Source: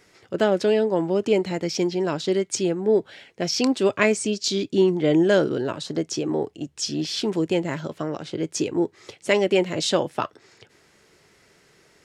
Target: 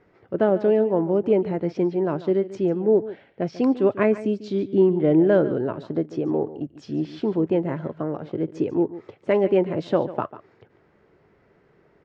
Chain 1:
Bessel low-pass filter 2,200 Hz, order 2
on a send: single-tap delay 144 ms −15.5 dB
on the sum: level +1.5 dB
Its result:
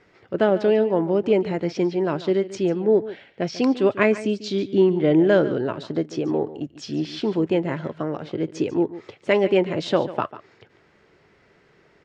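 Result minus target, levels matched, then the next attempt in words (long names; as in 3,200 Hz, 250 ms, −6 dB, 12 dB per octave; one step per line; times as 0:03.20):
2,000 Hz band +6.0 dB
Bessel low-pass filter 1,000 Hz, order 2
on a send: single-tap delay 144 ms −15.5 dB
on the sum: level +1.5 dB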